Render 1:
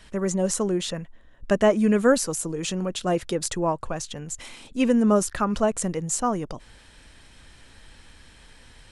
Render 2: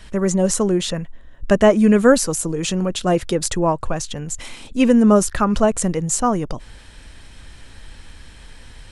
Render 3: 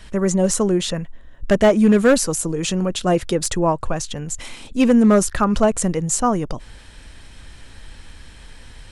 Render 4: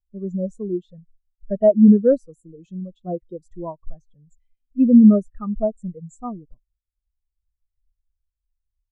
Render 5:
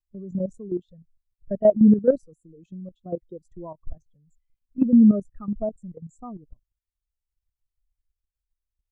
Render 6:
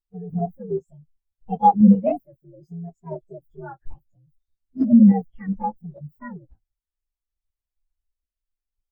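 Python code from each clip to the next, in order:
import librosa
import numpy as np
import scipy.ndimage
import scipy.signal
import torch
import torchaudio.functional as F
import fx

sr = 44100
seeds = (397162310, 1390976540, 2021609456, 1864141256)

y1 = fx.low_shelf(x, sr, hz=110.0, db=6.5)
y1 = F.gain(torch.from_numpy(y1), 5.5).numpy()
y2 = np.clip(y1, -10.0 ** (-7.5 / 20.0), 10.0 ** (-7.5 / 20.0))
y3 = fx.spectral_expand(y2, sr, expansion=2.5)
y3 = F.gain(torch.from_numpy(y3), 4.0).numpy()
y4 = fx.level_steps(y3, sr, step_db=12)
y5 = fx.partial_stretch(y4, sr, pct=128)
y5 = F.gain(torch.from_numpy(y5), 3.5).numpy()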